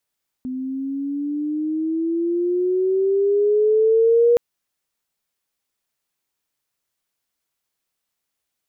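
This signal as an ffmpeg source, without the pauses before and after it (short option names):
-f lavfi -i "aevalsrc='pow(10,(-11+13.5*(t/3.92-1))/20)*sin(2*PI*254*3.92/(11*log(2)/12)*(exp(11*log(2)/12*t/3.92)-1))':d=3.92:s=44100"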